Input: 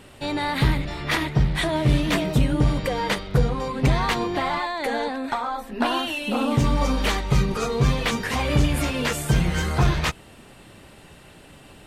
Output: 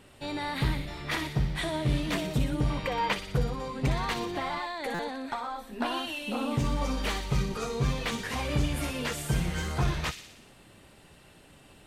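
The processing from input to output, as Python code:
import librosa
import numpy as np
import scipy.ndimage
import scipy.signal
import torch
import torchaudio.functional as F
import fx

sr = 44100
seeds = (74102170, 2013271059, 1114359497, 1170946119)

y = fx.graphic_eq_15(x, sr, hz=(1000, 2500, 10000), db=(8, 7, -9), at=(2.7, 3.13))
y = fx.echo_wet_highpass(y, sr, ms=60, feedback_pct=63, hz=3200.0, wet_db=-5)
y = fx.buffer_glitch(y, sr, at_s=(4.94,), block=256, repeats=8)
y = y * librosa.db_to_amplitude(-8.0)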